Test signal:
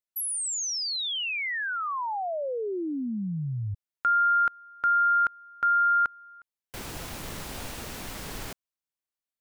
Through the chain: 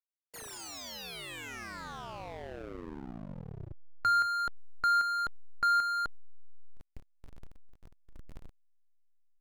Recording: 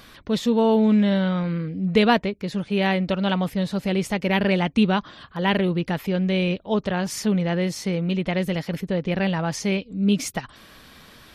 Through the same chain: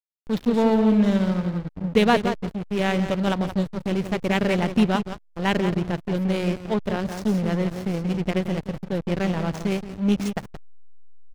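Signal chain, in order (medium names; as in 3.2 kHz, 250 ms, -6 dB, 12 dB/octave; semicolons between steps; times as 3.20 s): feedback delay 174 ms, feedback 24%, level -7.5 dB; hysteresis with a dead band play -20.5 dBFS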